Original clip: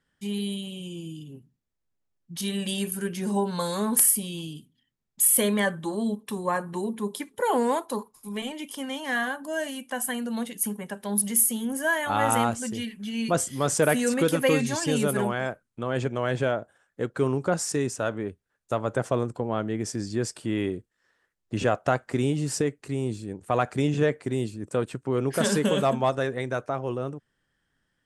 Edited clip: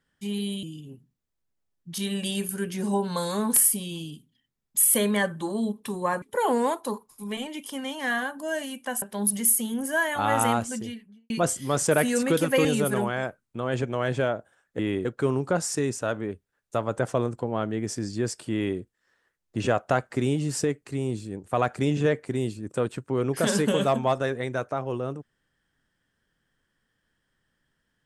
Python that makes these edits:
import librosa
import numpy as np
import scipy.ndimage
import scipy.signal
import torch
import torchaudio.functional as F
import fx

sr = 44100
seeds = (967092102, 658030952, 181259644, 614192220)

y = fx.studio_fade_out(x, sr, start_s=12.57, length_s=0.64)
y = fx.edit(y, sr, fx.cut(start_s=0.63, length_s=0.43),
    fx.cut(start_s=6.65, length_s=0.62),
    fx.cut(start_s=10.07, length_s=0.86),
    fx.cut(start_s=14.56, length_s=0.32),
    fx.duplicate(start_s=20.5, length_s=0.26, to_s=17.02), tone=tone)